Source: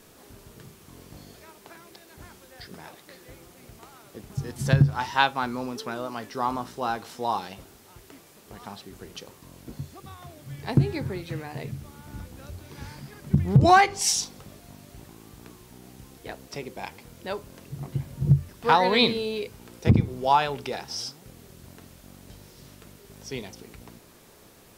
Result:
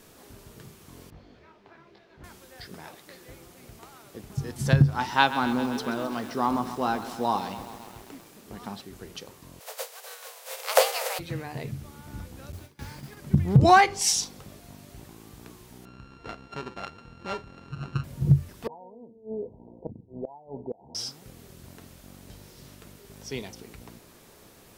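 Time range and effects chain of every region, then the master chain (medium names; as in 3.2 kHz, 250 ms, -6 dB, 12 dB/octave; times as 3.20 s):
1.10–2.24 s: distance through air 240 m + detune thickener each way 31 cents
4.94–8.81 s: peaking EQ 240 Hz +6.5 dB 1.1 oct + bit-crushed delay 132 ms, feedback 80%, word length 7-bit, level -13 dB
9.59–11.18 s: spectral contrast reduction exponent 0.44 + frequency shift +390 Hz
12.52–13.17 s: gate with hold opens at -32 dBFS, closes at -38 dBFS + modulation noise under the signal 19 dB
15.85–18.04 s: sorted samples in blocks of 32 samples + distance through air 150 m
18.67–20.95 s: rippled Chebyshev low-pass 970 Hz, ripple 6 dB + peaking EQ 500 Hz +6 dB 0.58 oct + inverted gate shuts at -22 dBFS, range -24 dB
whole clip: none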